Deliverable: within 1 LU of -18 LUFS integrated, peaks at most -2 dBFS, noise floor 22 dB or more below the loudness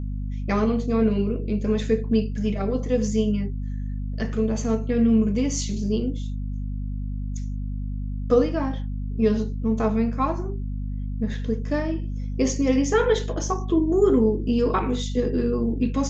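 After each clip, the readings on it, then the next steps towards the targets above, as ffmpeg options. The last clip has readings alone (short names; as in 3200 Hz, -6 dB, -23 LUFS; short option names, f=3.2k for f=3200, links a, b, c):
hum 50 Hz; harmonics up to 250 Hz; hum level -26 dBFS; loudness -24.5 LUFS; peak -6.5 dBFS; loudness target -18.0 LUFS
-> -af "bandreject=f=50:t=h:w=4,bandreject=f=100:t=h:w=4,bandreject=f=150:t=h:w=4,bandreject=f=200:t=h:w=4,bandreject=f=250:t=h:w=4"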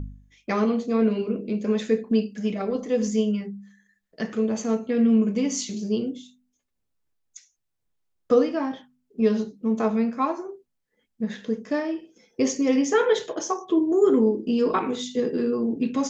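hum none; loudness -24.5 LUFS; peak -7.5 dBFS; loudness target -18.0 LUFS
-> -af "volume=6.5dB,alimiter=limit=-2dB:level=0:latency=1"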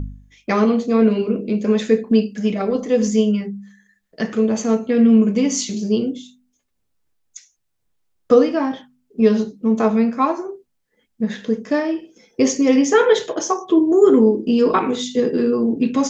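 loudness -18.0 LUFS; peak -2.0 dBFS; noise floor -70 dBFS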